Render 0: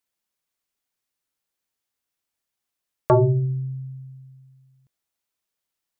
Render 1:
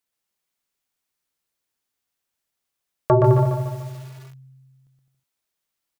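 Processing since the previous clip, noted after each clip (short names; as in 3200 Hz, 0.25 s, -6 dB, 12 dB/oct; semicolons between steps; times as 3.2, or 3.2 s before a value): on a send: bouncing-ball echo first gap 0.12 s, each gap 0.75×, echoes 5; on the sum: lo-fi delay 0.146 s, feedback 55%, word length 7-bit, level -6 dB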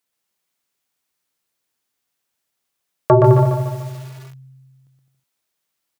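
HPF 84 Hz; gain +4.5 dB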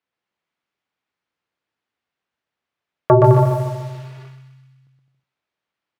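low-pass opened by the level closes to 2600 Hz, open at -13 dBFS; thinning echo 0.127 s, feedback 60%, high-pass 820 Hz, level -8 dB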